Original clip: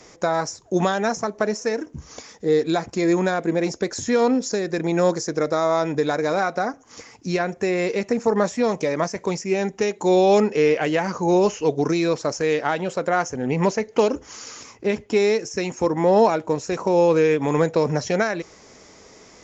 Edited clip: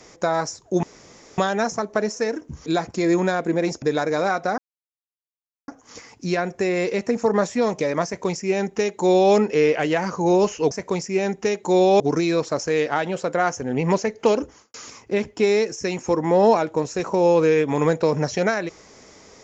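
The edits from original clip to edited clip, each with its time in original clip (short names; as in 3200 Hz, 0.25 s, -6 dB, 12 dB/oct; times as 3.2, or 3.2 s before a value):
0.83 insert room tone 0.55 s
2.11–2.65 cut
3.81–5.94 cut
6.7 insert silence 1.10 s
9.07–10.36 copy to 11.73
14.15–14.47 studio fade out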